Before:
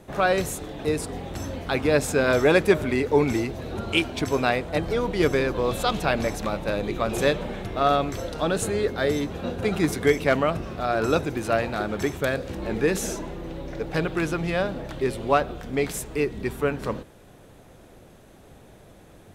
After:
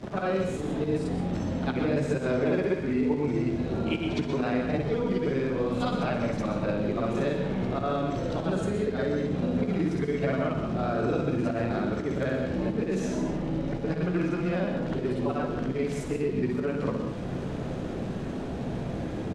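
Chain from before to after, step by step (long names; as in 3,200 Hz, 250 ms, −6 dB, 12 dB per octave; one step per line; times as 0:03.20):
every overlapping window played backwards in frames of 136 ms
parametric band 200 Hz +9 dB 2.3 octaves
notch filter 3,500 Hz, Q 28
reversed playback
upward compression, threshold −30 dBFS
reversed playback
volume swells 133 ms
downward compressor 5 to 1, threshold −33 dBFS, peak gain reduction 19 dB
surface crackle 530 per second −45 dBFS
high-frequency loss of the air 100 metres
double-tracking delay 16 ms −12 dB
on a send: convolution reverb RT60 0.55 s, pre-delay 116 ms, DRR 5 dB
on the sum: level +6 dB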